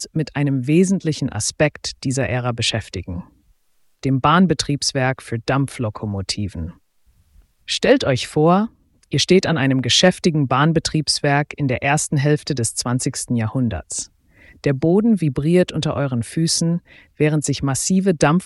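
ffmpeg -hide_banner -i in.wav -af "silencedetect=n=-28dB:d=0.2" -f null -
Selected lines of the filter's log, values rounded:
silence_start: 3.21
silence_end: 4.03 | silence_duration: 0.83
silence_start: 6.70
silence_end: 7.69 | silence_duration: 0.99
silence_start: 8.66
silence_end: 9.13 | silence_duration: 0.46
silence_start: 14.03
silence_end: 14.64 | silence_duration: 0.61
silence_start: 16.78
silence_end: 17.20 | silence_duration: 0.42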